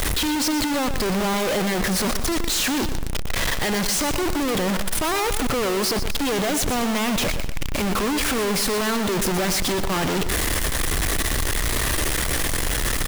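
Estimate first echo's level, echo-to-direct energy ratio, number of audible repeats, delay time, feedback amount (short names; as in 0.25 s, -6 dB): -10.5 dB, -10.0 dB, 3, 0.121 s, 35%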